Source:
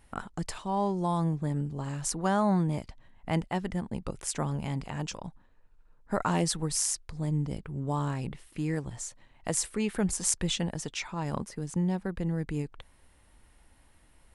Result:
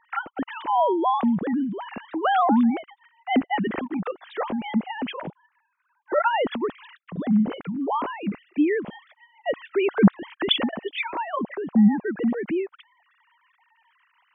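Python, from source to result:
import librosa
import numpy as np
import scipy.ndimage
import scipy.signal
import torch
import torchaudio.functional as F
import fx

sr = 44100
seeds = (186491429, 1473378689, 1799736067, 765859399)

y = fx.sine_speech(x, sr)
y = y * 10.0 ** (7.0 / 20.0)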